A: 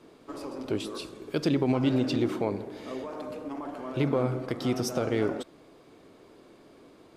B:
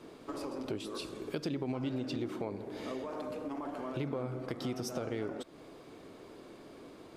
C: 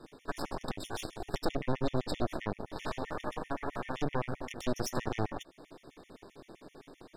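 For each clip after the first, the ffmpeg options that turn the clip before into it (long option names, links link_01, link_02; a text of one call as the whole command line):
ffmpeg -i in.wav -af "acompressor=threshold=-40dB:ratio=3,volume=2.5dB" out.wav
ffmpeg -i in.wav -af "aeval=exprs='0.075*(cos(1*acos(clip(val(0)/0.075,-1,1)))-cos(1*PI/2))+0.0376*(cos(6*acos(clip(val(0)/0.075,-1,1)))-cos(6*PI/2))':channel_layout=same,afftfilt=real='re*gt(sin(2*PI*7.7*pts/sr)*(1-2*mod(floor(b*sr/1024/1800),2)),0)':imag='im*gt(sin(2*PI*7.7*pts/sr)*(1-2*mod(floor(b*sr/1024/1800),2)),0)':win_size=1024:overlap=0.75" out.wav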